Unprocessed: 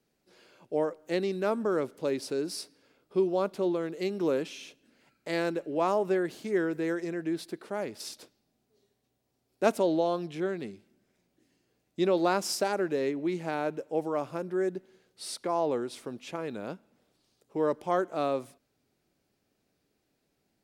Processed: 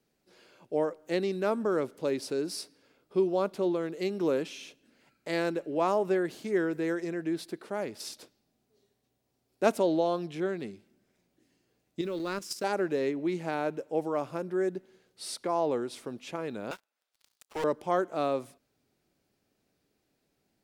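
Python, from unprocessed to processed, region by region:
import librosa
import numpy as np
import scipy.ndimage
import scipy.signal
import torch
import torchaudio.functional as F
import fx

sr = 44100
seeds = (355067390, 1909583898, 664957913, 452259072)

y = fx.chain(x, sr, fx.law_mismatch(coded='A'),
    fx.peak_eq(hz=760.0, db=-14.0, octaves=0.59),
    fx.level_steps(step_db=11), at=(12.01, 12.64))
y = fx.chain(y, sr, fx.highpass(hz=1100.0, slope=12),
    fx.leveller(passes=5), at=(16.71, 17.64))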